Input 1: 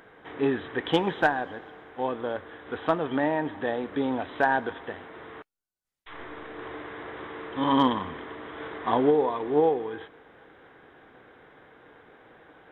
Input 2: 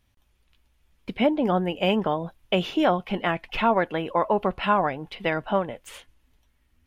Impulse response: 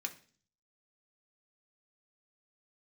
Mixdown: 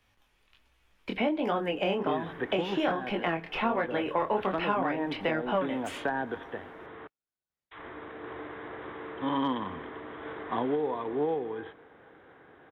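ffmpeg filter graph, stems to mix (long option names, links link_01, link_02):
-filter_complex "[0:a]highpass=45,adelay=1650,volume=-1.5dB[link_01];[1:a]lowshelf=frequency=350:gain=-11,acontrast=87,flanger=delay=18.5:depth=7.3:speed=1.3,volume=1dB,asplit=2[link_02][link_03];[link_03]volume=-7dB[link_04];[2:a]atrim=start_sample=2205[link_05];[link_04][link_05]afir=irnorm=-1:irlink=0[link_06];[link_01][link_02][link_06]amix=inputs=3:normalize=0,acrossover=split=180|440|1300[link_07][link_08][link_09][link_10];[link_07]acompressor=threshold=-45dB:ratio=4[link_11];[link_08]acompressor=threshold=-31dB:ratio=4[link_12];[link_09]acompressor=threshold=-34dB:ratio=4[link_13];[link_10]acompressor=threshold=-34dB:ratio=4[link_14];[link_11][link_12][link_13][link_14]amix=inputs=4:normalize=0,highshelf=frequency=4200:gain=-11.5"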